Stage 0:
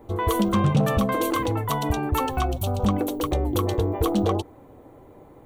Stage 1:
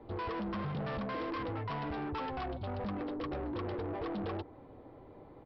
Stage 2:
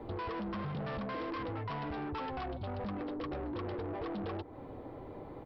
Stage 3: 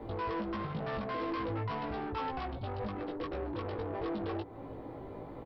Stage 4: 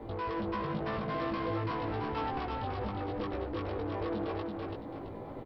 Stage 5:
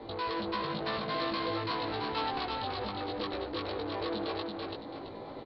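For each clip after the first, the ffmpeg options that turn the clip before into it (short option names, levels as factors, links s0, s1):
-filter_complex "[0:a]acrossover=split=120|2600[s0][s1][s2];[s0]acompressor=threshold=0.0158:ratio=4[s3];[s1]acompressor=threshold=0.0794:ratio=4[s4];[s2]acompressor=threshold=0.00501:ratio=4[s5];[s3][s4][s5]amix=inputs=3:normalize=0,aresample=11025,asoftclip=type=tanh:threshold=0.0335,aresample=44100,volume=0.562"
-af "acompressor=threshold=0.00398:ratio=3,volume=2.37"
-filter_complex "[0:a]asplit=2[s0][s1];[s1]adelay=18,volume=0.708[s2];[s0][s2]amix=inputs=2:normalize=0"
-af "aecho=1:1:333|666|999|1332:0.708|0.234|0.0771|0.0254"
-af "lowpass=f=4200:t=q:w=6.5,lowshelf=f=170:g=-11,volume=1.19"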